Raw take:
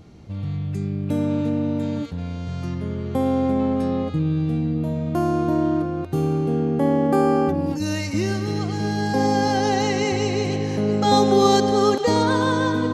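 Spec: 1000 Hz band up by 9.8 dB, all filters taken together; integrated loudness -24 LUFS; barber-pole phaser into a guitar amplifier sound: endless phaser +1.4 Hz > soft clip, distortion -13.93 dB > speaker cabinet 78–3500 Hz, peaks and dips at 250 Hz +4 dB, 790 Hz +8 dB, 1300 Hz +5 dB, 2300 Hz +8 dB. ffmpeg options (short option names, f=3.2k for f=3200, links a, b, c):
-filter_complex "[0:a]equalizer=f=1k:t=o:g=3.5,asplit=2[a][b];[b]afreqshift=1.4[c];[a][c]amix=inputs=2:normalize=1,asoftclip=threshold=-17.5dB,highpass=78,equalizer=f=250:t=q:w=4:g=4,equalizer=f=790:t=q:w=4:g=8,equalizer=f=1.3k:t=q:w=4:g=5,equalizer=f=2.3k:t=q:w=4:g=8,lowpass=f=3.5k:w=0.5412,lowpass=f=3.5k:w=1.3066,volume=-1.5dB"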